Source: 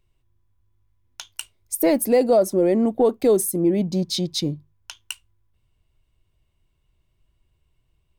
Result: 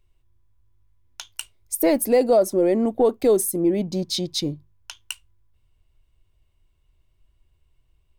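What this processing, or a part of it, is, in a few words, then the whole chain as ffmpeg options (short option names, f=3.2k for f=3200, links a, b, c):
low shelf boost with a cut just above: -af "lowshelf=f=61:g=6,equalizer=f=170:t=o:w=0.88:g=-5"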